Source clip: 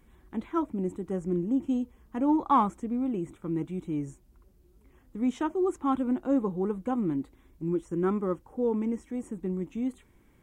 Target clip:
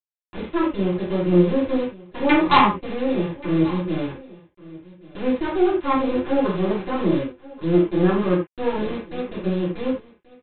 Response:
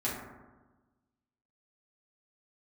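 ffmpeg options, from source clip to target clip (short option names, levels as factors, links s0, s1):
-filter_complex "[0:a]aresample=8000,acrusher=bits=4:dc=4:mix=0:aa=0.000001,aresample=44100,aecho=1:1:1132:0.0944[s0];[1:a]atrim=start_sample=2205,afade=t=out:st=0.19:d=0.01,atrim=end_sample=8820,asetrate=61740,aresample=44100[s1];[s0][s1]afir=irnorm=-1:irlink=0,volume=2.11"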